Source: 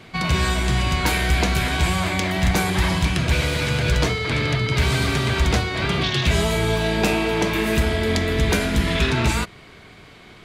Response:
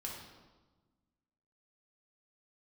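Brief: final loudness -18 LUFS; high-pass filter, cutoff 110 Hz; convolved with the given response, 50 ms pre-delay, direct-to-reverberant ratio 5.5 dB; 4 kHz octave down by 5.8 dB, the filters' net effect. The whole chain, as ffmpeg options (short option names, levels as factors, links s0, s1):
-filter_complex "[0:a]highpass=110,equalizer=f=4000:t=o:g=-7.5,asplit=2[s0][s1];[1:a]atrim=start_sample=2205,adelay=50[s2];[s1][s2]afir=irnorm=-1:irlink=0,volume=0.596[s3];[s0][s3]amix=inputs=2:normalize=0,volume=1.5"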